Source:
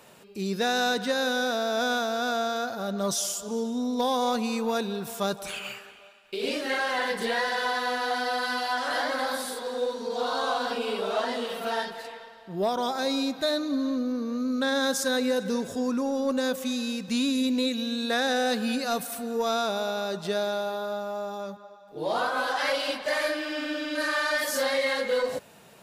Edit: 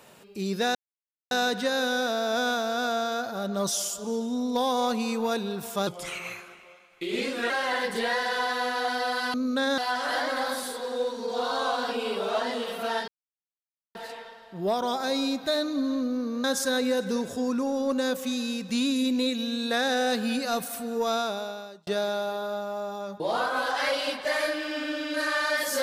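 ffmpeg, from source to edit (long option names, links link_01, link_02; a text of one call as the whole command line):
ffmpeg -i in.wav -filter_complex "[0:a]asplit=10[link_01][link_02][link_03][link_04][link_05][link_06][link_07][link_08][link_09][link_10];[link_01]atrim=end=0.75,asetpts=PTS-STARTPTS,afade=type=out:start_time=0.746:duration=0.004:curve=hsin,apad=pad_dur=0.56[link_11];[link_02]atrim=start=0.75:end=5.314,asetpts=PTS-STARTPTS,afade=type=in:duration=0.004:curve=hsin[link_12];[link_03]atrim=start=5.31:end=6.76,asetpts=PTS-STARTPTS,asetrate=39249,aresample=44100,atrim=end_sample=71848,asetpts=PTS-STARTPTS[link_13];[link_04]atrim=start=6.756:end=8.602[link_14];[link_05]atrim=start=14.388:end=14.832[link_15];[link_06]atrim=start=8.598:end=11.9,asetpts=PTS-STARTPTS,afade=type=out:start_time=3.298:duration=0.004:curve=hsin,apad=pad_dur=0.87[link_16];[link_07]atrim=start=11.9:end=14.392,asetpts=PTS-STARTPTS,afade=type=in:duration=0.004:curve=hsin[link_17];[link_08]atrim=start=14.828:end=20.26,asetpts=PTS-STARTPTS,afade=type=out:start_time=4.692:duration=0.74[link_18];[link_09]atrim=start=20.26:end=21.592,asetpts=PTS-STARTPTS,afade=type=in:duration=0.004:curve=hsin[link_19];[link_10]atrim=start=22.008[link_20];[link_11][link_12]concat=n=2:v=0:a=1[link_21];[link_21][link_13]acrossfade=duration=0.004:curve1=hsin:curve2=hsin[link_22];[link_22][link_14]acrossfade=duration=0.004:curve1=hsin:curve2=hsin[link_23];[link_23][link_15]acrossfade=duration=0.004:curve1=hsin:curve2=hsin[link_24];[link_16][link_17]concat=n=2:v=0:a=1[link_25];[link_24][link_25]acrossfade=duration=0.004:curve1=hsin:curve2=hsin[link_26];[link_18][link_19]concat=n=2:v=0:a=1[link_27];[link_26][link_27]acrossfade=duration=0.004:curve1=hsin:curve2=hsin[link_28];[link_28][link_20]acrossfade=duration=0.004:curve1=hsin:curve2=hsin" out.wav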